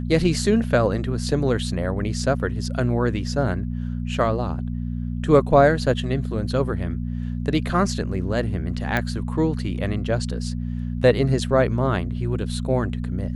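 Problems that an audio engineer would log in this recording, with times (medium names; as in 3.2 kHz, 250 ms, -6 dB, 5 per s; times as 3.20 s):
hum 60 Hz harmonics 4 -27 dBFS
8.97 s: pop -10 dBFS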